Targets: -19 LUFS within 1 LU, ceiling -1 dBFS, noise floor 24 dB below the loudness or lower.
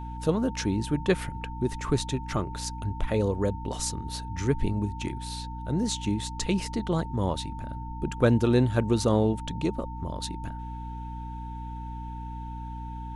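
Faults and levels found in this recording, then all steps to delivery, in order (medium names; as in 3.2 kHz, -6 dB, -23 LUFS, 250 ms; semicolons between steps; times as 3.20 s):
hum 60 Hz; highest harmonic 300 Hz; hum level -35 dBFS; steady tone 900 Hz; tone level -40 dBFS; loudness -29.5 LUFS; peak level -10.0 dBFS; loudness target -19.0 LUFS
-> hum notches 60/120/180/240/300 Hz; band-stop 900 Hz, Q 30; trim +10.5 dB; peak limiter -1 dBFS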